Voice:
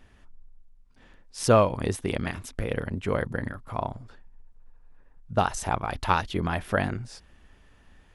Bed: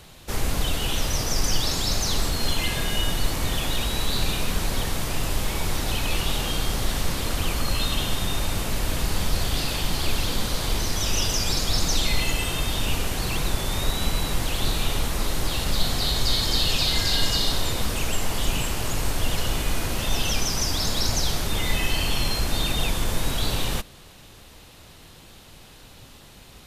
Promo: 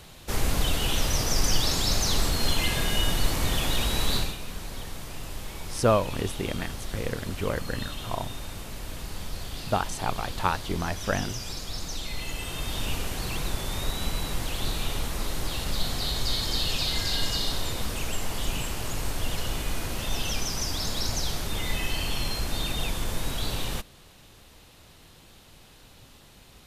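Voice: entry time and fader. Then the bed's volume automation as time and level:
4.35 s, −2.5 dB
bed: 0:04.16 −0.5 dB
0:04.37 −11.5 dB
0:12.08 −11.5 dB
0:12.79 −5 dB

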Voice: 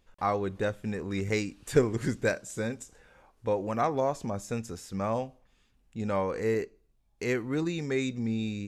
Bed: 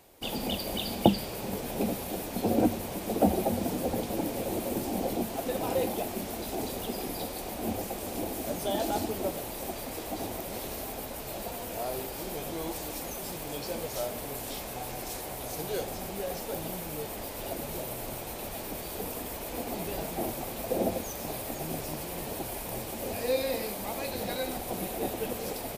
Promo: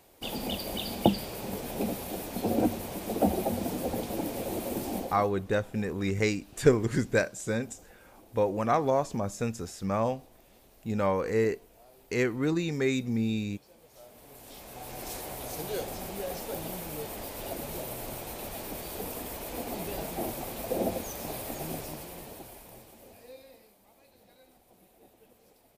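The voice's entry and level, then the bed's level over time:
4.90 s, +2.0 dB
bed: 0:04.97 −1.5 dB
0:05.36 −23 dB
0:13.78 −23 dB
0:15.08 −1 dB
0:21.69 −1 dB
0:23.79 −26.5 dB

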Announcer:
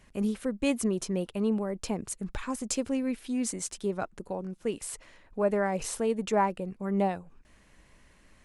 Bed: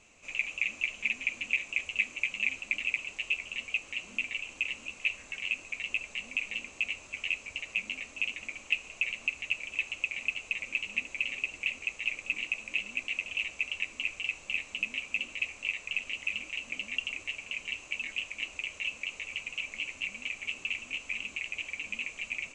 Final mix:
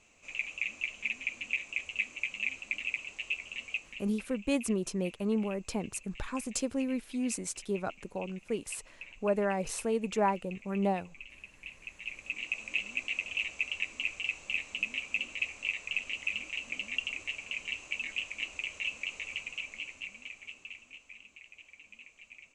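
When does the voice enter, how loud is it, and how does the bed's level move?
3.85 s, −2.5 dB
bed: 0:03.74 −3.5 dB
0:04.25 −16.5 dB
0:11.50 −16.5 dB
0:12.62 −0.5 dB
0:19.31 −0.5 dB
0:21.24 −16.5 dB

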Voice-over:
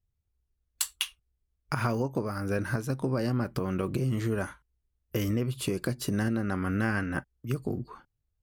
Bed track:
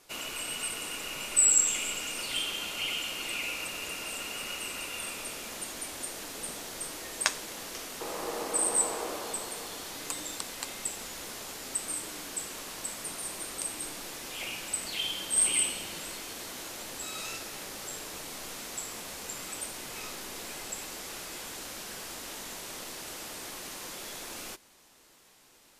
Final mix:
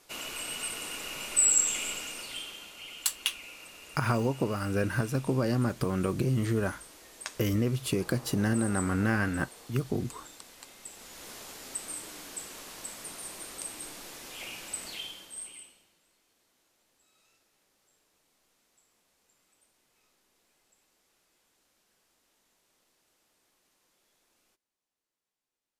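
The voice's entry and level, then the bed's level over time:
2.25 s, +1.0 dB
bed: 0:01.90 −1 dB
0:02.74 −12 dB
0:10.79 −12 dB
0:11.30 −4 dB
0:14.90 −4 dB
0:15.98 −31 dB

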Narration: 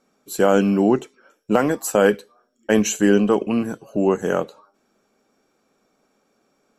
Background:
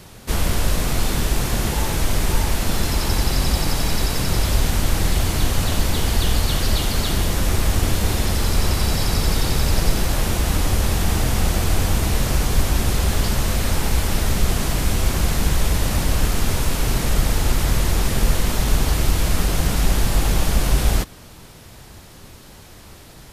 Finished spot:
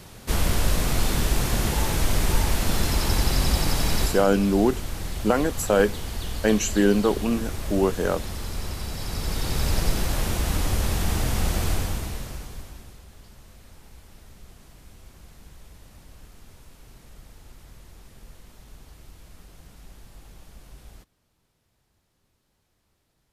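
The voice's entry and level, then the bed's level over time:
3.75 s, −3.5 dB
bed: 0:04.04 −2.5 dB
0:04.27 −12.5 dB
0:08.93 −12.5 dB
0:09.65 −5 dB
0:11.69 −5 dB
0:13.06 −29 dB

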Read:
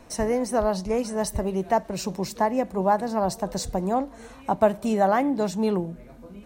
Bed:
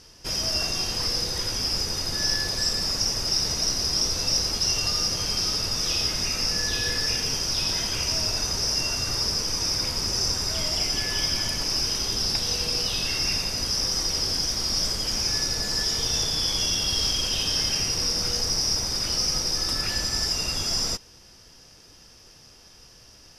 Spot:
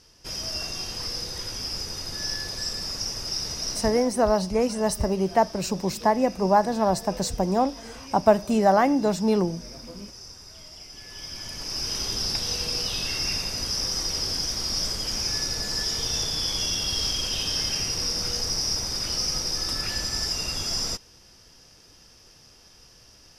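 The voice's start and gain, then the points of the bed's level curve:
3.65 s, +2.0 dB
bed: 0:03.76 −5.5 dB
0:04.13 −18.5 dB
0:10.88 −18.5 dB
0:11.98 −2 dB

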